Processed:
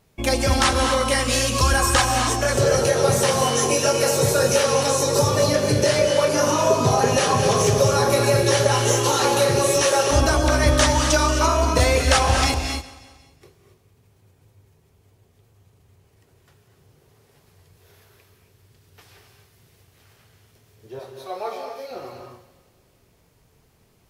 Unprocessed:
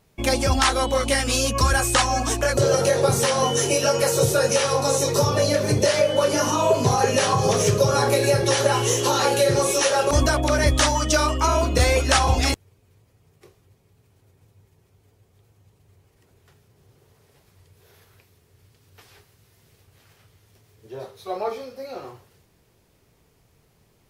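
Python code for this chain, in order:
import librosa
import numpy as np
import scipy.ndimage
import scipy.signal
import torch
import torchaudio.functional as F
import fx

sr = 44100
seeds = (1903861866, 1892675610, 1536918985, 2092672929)

p1 = fx.low_shelf(x, sr, hz=340.0, db=-11.0, at=(20.99, 21.91))
p2 = p1 + fx.echo_feedback(p1, sr, ms=181, feedback_pct=53, wet_db=-19, dry=0)
y = fx.rev_gated(p2, sr, seeds[0], gate_ms=290, shape='rising', drr_db=4.0)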